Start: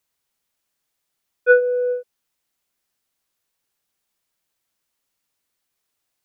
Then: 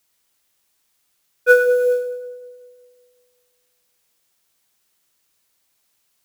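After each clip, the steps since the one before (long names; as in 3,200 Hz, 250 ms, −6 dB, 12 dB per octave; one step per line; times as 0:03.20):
high-shelf EQ 2,100 Hz +8.5 dB
log-companded quantiser 6 bits
on a send: echo with a time of its own for lows and highs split 710 Hz, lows 184 ms, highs 103 ms, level −10 dB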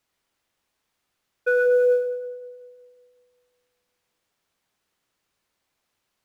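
low-pass filter 1,900 Hz 6 dB per octave
brickwall limiter −14 dBFS, peak gain reduction 11 dB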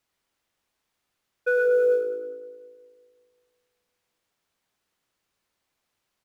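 echo with shifted repeats 100 ms, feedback 45%, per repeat −54 Hz, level −17.5 dB
level −2 dB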